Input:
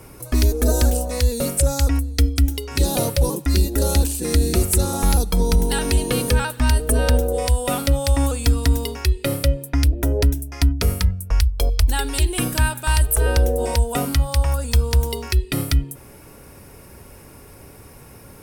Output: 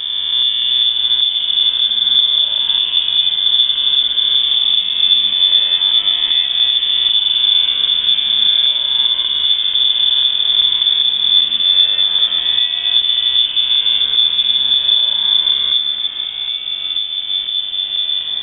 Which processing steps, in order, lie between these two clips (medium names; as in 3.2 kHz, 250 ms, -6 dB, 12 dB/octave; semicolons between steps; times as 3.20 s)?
reverse spectral sustain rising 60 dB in 2.96 s; treble shelf 2.2 kHz -9 dB; ever faster or slower copies 630 ms, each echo -4 st, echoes 3, each echo -6 dB; bass shelf 93 Hz +8 dB; frequency inversion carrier 3.5 kHz; trim -7.5 dB